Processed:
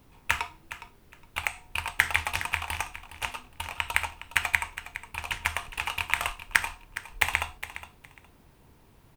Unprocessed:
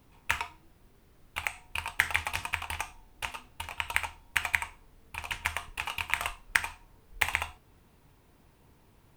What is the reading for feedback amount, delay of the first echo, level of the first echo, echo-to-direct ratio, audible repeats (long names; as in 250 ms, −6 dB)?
20%, 413 ms, −13.5 dB, −13.5 dB, 2